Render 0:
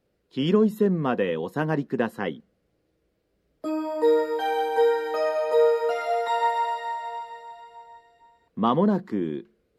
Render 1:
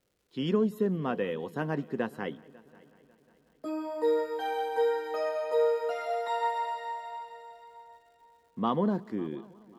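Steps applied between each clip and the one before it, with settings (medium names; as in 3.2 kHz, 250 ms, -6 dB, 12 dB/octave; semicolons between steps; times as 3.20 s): crackle 340 per s -55 dBFS; multi-head delay 182 ms, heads first and third, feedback 54%, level -24 dB; trim -6.5 dB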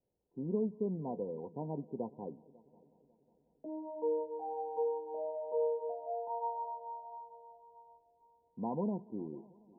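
Chebyshev low-pass 1 kHz, order 10; trim -7 dB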